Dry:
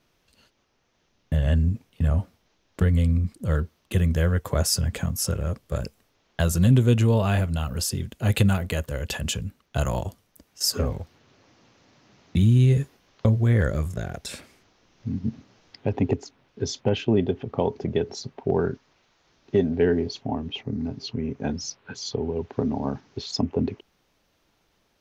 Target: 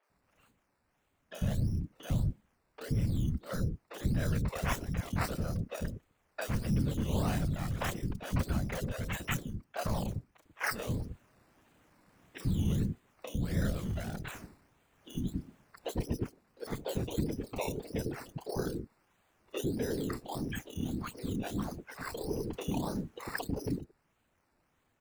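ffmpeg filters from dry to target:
ffmpeg -i in.wav -filter_complex "[0:a]afftfilt=real='hypot(re,im)*cos(2*PI*random(0))':imag='hypot(re,im)*sin(2*PI*random(1))':win_size=512:overlap=0.75,acrusher=samples=11:mix=1:aa=0.000001:lfo=1:lforange=6.6:lforate=1.6,alimiter=limit=-21dB:level=0:latency=1:release=353,acrossover=split=420|4000[link_01][link_02][link_03];[link_03]adelay=30[link_04];[link_01]adelay=100[link_05];[link_05][link_02][link_04]amix=inputs=3:normalize=0" out.wav

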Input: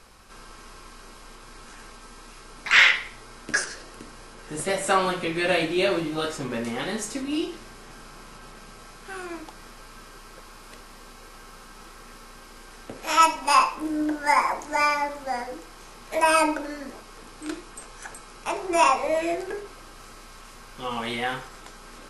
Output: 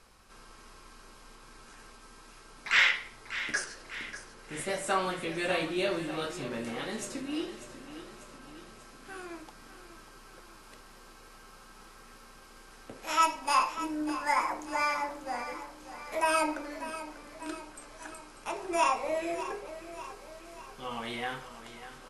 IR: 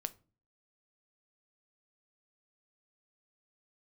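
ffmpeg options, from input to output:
-af "aecho=1:1:593|1186|1779|2372|2965|3558:0.237|0.13|0.0717|0.0395|0.0217|0.0119,volume=-7.5dB"

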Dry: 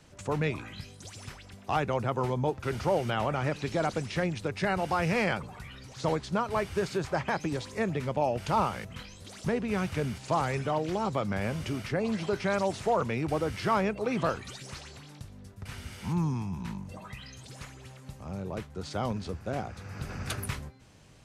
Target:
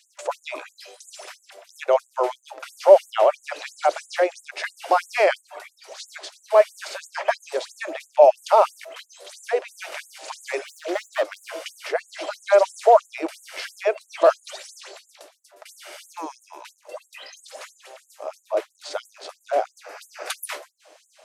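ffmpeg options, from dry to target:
ffmpeg -i in.wav -filter_complex "[0:a]equalizer=frequency=620:width_type=o:width=0.51:gain=13.5,asettb=1/sr,asplit=3[link_01][link_02][link_03];[link_01]atrim=end=10.564[link_04];[link_02]atrim=start=10.56:end=11.54,asetpts=PTS-STARTPTS,afade=type=in:duration=0.004:curve=qsin,afade=type=out:start_time=0.976:duration=0.004:curve=qsin,asoftclip=type=hard:threshold=-22.5dB[link_05];[link_03]atrim=start=11.536[link_06];[link_04][link_05]acrossfade=duration=0.004:curve1=hsin:curve2=qsin[link_07];[link_07][link_06]acrossfade=duration=0.004:curve1=qsin:curve2=hsin,asettb=1/sr,asplit=3[link_08][link_09][link_10];[link_08]atrim=end=18.064[link_11];[link_09]atrim=start=18.06:end=18.59,asetpts=PTS-STARTPTS,afade=type=in:duration=0.004:curve=qsin,afade=type=out:start_time=0.526:duration=0.004:curve=qsin,asplit=2[link_12][link_13];[link_13]adelay=27,volume=-6dB[link_14];[link_12][link_14]amix=inputs=2:normalize=0,atrim=end_sample=23373[link_15];[link_10]atrim=start=18.586[link_16];[link_11][link_15]acrossfade=duration=0.004:curve1=hsin:curve2=qsin[link_17];[link_17][link_16]acrossfade=duration=0.004:curve1=qsin:curve2=hsin,afftfilt=real='re*gte(b*sr/1024,290*pow(6800/290,0.5+0.5*sin(2*PI*3*pts/sr)))':imag='im*gte(b*sr/1024,290*pow(6800/290,0.5+0.5*sin(2*PI*3*pts/sr)))':win_size=1024:overlap=0.75,volume=6.5dB" out.wav

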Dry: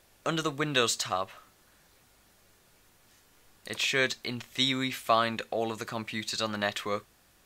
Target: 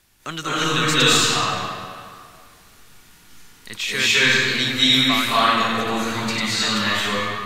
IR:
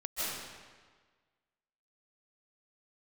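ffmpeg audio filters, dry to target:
-filter_complex "[0:a]acrossover=split=260[link_01][link_02];[link_01]asoftclip=type=hard:threshold=-39.5dB[link_03];[link_02]equalizer=frequency=540:width=1.3:gain=-13[link_04];[link_03][link_04]amix=inputs=2:normalize=0[link_05];[1:a]atrim=start_sample=2205,asetrate=31752,aresample=44100[link_06];[link_05][link_06]afir=irnorm=-1:irlink=0,volume=6dB"

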